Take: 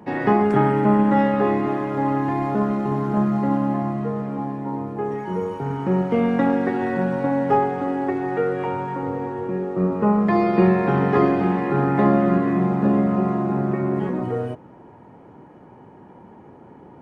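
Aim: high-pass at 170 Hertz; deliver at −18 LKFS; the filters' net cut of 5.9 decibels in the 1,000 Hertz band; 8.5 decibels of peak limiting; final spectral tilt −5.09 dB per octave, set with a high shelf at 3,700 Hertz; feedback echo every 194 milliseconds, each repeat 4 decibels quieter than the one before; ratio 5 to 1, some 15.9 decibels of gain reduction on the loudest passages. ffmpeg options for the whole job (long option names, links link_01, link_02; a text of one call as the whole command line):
ffmpeg -i in.wav -af "highpass=170,equalizer=frequency=1000:width_type=o:gain=-7.5,highshelf=frequency=3700:gain=-7,acompressor=threshold=-33dB:ratio=5,alimiter=level_in=5.5dB:limit=-24dB:level=0:latency=1,volume=-5.5dB,aecho=1:1:194|388|582|776|970|1164|1358|1552|1746:0.631|0.398|0.25|0.158|0.0994|0.0626|0.0394|0.0249|0.0157,volume=19.5dB" out.wav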